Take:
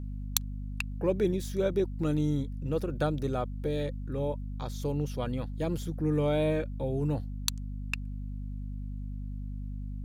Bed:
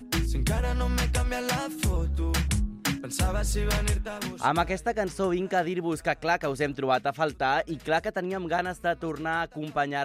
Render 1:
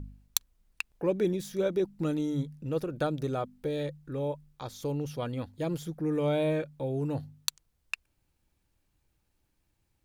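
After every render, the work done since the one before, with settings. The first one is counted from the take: de-hum 50 Hz, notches 5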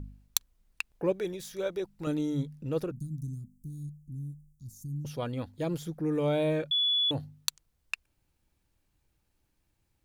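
1.12–2.07 bell 230 Hz -13.5 dB 1.3 oct; 2.91–5.05 inverse Chebyshev band-stop 480–3100 Hz, stop band 50 dB; 6.71–7.11 bleep 3420 Hz -23.5 dBFS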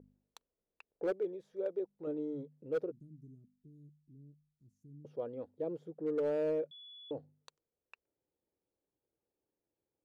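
band-pass 460 Hz, Q 2.9; overloaded stage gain 28 dB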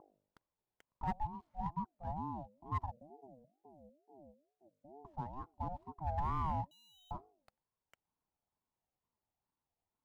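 median filter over 15 samples; ring modulator with a swept carrier 470 Hz, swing 25%, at 2.2 Hz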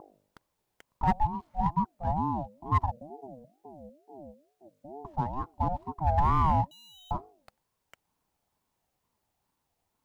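gain +12 dB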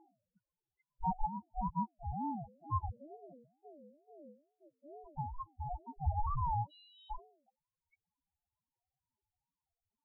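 loudest bins only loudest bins 2; noise-modulated level, depth 55%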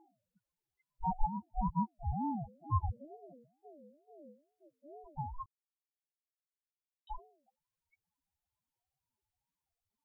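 1.12–3.05 low shelf 350 Hz +5.5 dB; 5.46–7.07 mute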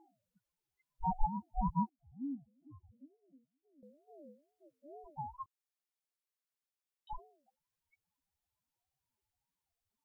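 1.89–3.83 vowel filter i; 5.1–7.13 HPF 290 Hz 6 dB/oct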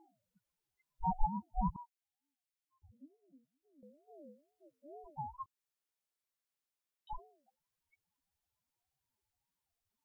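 1.76–2.82 inverse Chebyshev high-pass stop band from 530 Hz, stop band 50 dB

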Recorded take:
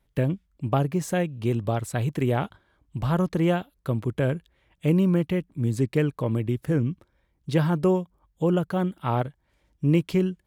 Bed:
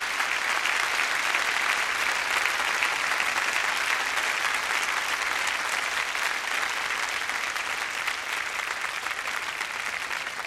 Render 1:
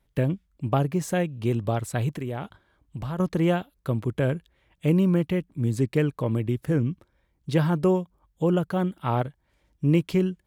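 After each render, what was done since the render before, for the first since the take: 2.12–3.2 compressor 2.5:1, threshold -31 dBFS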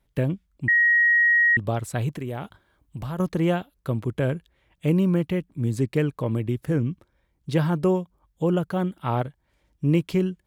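0.68–1.57 bleep 1890 Hz -15 dBFS; 2.28–3.32 high shelf 9500 Hz +8 dB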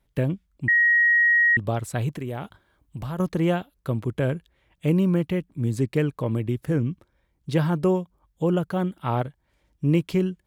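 nothing audible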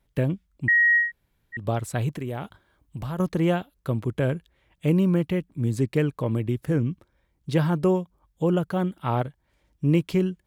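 1.04–1.6 room tone, crossfade 0.16 s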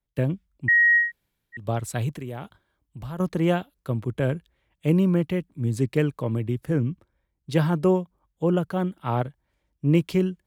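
three-band expander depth 40%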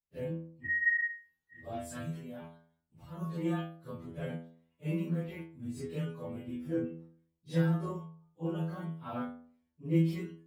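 phase scrambler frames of 0.1 s; metallic resonator 81 Hz, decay 0.61 s, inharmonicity 0.002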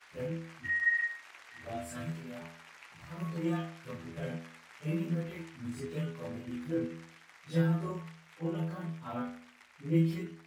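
add bed -28.5 dB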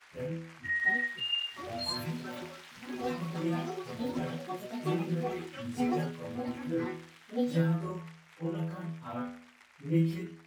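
echoes that change speed 0.75 s, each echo +7 st, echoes 2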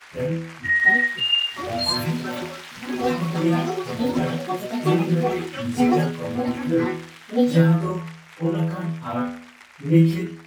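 gain +12 dB

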